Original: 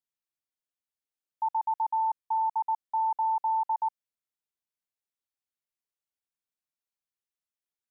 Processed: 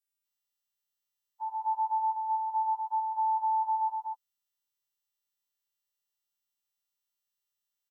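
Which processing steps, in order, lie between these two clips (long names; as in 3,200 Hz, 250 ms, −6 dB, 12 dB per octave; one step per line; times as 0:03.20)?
every partial snapped to a pitch grid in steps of 2 semitones
loudspeakers that aren't time-aligned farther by 35 metres −8 dB, 83 metres −1 dB
level −6.5 dB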